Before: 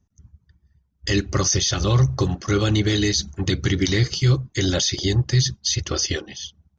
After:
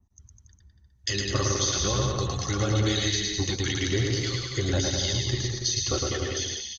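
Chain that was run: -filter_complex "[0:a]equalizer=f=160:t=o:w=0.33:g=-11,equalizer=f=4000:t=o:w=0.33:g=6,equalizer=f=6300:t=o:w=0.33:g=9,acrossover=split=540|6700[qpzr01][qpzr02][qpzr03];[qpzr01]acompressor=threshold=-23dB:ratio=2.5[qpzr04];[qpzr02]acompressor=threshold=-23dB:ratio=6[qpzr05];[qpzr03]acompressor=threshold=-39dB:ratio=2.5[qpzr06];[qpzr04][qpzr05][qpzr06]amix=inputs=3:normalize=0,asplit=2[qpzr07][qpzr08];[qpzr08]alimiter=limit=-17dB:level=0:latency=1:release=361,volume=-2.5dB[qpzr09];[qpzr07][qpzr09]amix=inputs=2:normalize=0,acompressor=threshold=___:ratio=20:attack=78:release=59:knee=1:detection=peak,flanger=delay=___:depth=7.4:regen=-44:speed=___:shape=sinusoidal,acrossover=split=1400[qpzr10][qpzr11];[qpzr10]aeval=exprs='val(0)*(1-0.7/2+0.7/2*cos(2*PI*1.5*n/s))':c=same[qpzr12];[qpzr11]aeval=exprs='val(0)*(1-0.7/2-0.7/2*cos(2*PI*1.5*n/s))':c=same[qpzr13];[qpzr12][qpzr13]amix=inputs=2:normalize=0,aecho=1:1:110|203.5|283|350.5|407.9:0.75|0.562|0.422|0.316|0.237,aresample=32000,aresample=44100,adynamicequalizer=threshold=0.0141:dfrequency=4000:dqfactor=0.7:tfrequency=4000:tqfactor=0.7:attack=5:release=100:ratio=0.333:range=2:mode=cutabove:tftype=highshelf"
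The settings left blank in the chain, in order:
-23dB, 1, 0.41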